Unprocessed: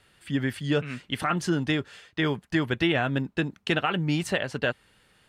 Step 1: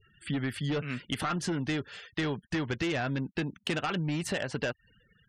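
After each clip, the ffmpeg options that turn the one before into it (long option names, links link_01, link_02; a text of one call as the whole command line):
ffmpeg -i in.wav -af "volume=22.5dB,asoftclip=hard,volume=-22.5dB,acompressor=threshold=-32dB:ratio=5,afftfilt=real='re*gte(hypot(re,im),0.00224)':imag='im*gte(hypot(re,im),0.00224)':win_size=1024:overlap=0.75,volume=3dB" out.wav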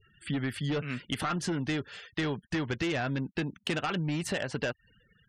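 ffmpeg -i in.wav -af anull out.wav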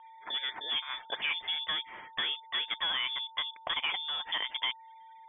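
ffmpeg -i in.wav -af "highpass=270,aeval=exprs='val(0)+0.00355*sin(2*PI*2800*n/s)':channel_layout=same,lowpass=frequency=3100:width_type=q:width=0.5098,lowpass=frequency=3100:width_type=q:width=0.6013,lowpass=frequency=3100:width_type=q:width=0.9,lowpass=frequency=3100:width_type=q:width=2.563,afreqshift=-3700" out.wav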